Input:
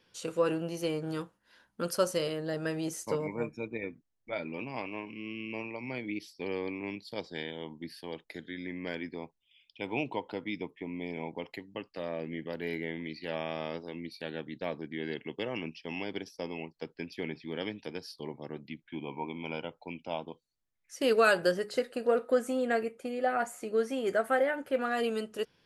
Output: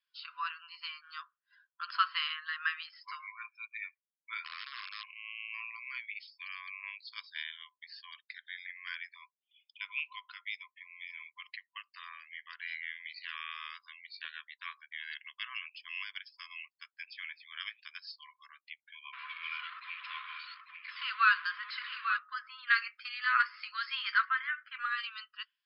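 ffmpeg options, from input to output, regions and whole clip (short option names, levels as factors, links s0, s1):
-filter_complex "[0:a]asettb=1/sr,asplit=3[s0][s1][s2];[s0]atrim=end=1.884[s3];[s1]atrim=start=1.88:end=2.83,asetpts=PTS-STARTPTS,afade=t=in:d=0.004:c=qsin,afade=t=out:st=0.946:d=0.004:c=qsin,lowpass=f=3500:w=0.5412,lowpass=f=3500:w=1.3066,acontrast=78[s4];[s2]atrim=start=2.826[s5];[s3][s4]acrossfade=d=0.004:c1=hsin:c2=qsin[s6];[s6][s5]acrossfade=d=0.004:c1=qsin:c2=hsin,asettb=1/sr,asplit=3[s7][s8][s9];[s7]atrim=end=4.444[s10];[s8]atrim=start=4.44:end=5.04,asetpts=PTS-STARTPTS,afade=t=in:d=0.004:c=qsin,afade=t=out:st=0.596:d=0.004:c=qsin,lowpass=2400,aeval=exprs='(mod(44.7*val(0)+1,2)-1)/44.7':c=same[s11];[s9]atrim=start=5.036[s12];[s10][s11]acrossfade=d=0.004:c1=hsin:c2=qsin[s13];[s13][s12]acrossfade=d=0.004:c1=qsin:c2=hsin,asettb=1/sr,asplit=3[s14][s15][s16];[s14]atrim=end=19.134[s17];[s15]atrim=start=19.13:end=22.17,asetpts=PTS-STARTPTS,afade=t=in:d=0.004:c=qsin,afade=t=out:st=3.036:d=0.004:c=qsin,aeval=exprs='val(0)+0.5*0.02*sgn(val(0))':c=same,lowpass=3100,aecho=1:1:845:0.422,atrim=end_sample=134064[s18];[s16]atrim=start=22.166[s19];[s17][s18]acrossfade=d=0.004:c1=hsin:c2=qsin[s20];[s20][s19]acrossfade=d=0.004:c1=qsin:c2=hsin,asettb=1/sr,asplit=3[s21][s22][s23];[s21]atrim=end=22.674[s24];[s22]atrim=start=22.67:end=24.25,asetpts=PTS-STARTPTS,afade=t=in:d=0.004:c=qsin,afade=t=out:st=1.576:d=0.004:c=qsin,acontrast=64,highshelf=f=5000:g=11.5[s25];[s23]atrim=start=24.246[s26];[s24][s25]acrossfade=d=0.004:c1=hsin:c2=qsin[s27];[s27][s26]acrossfade=d=0.004:c1=qsin:c2=hsin,afftfilt=real='re*between(b*sr/4096,1000,5300)':imag='im*between(b*sr/4096,1000,5300)':win_size=4096:overlap=0.75,afftdn=nr=20:nf=-56,volume=1.19"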